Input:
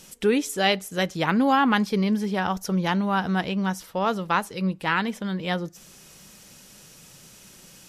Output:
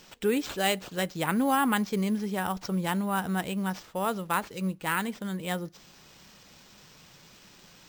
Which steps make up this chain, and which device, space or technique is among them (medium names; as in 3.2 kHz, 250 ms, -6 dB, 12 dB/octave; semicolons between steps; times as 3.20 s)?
early companding sampler (sample-rate reducer 11 kHz, jitter 0%; companded quantiser 8-bit); trim -5 dB